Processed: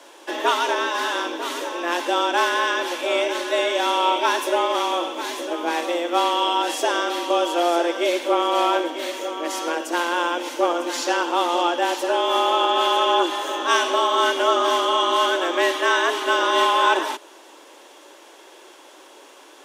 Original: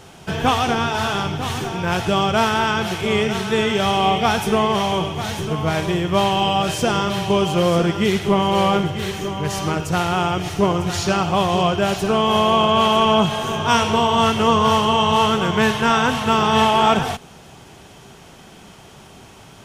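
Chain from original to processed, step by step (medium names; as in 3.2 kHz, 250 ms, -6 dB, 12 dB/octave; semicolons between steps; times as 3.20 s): high-pass 180 Hz 12 dB/octave; band-stop 1.1 kHz, Q 23; frequency shift +170 Hz; trim -2 dB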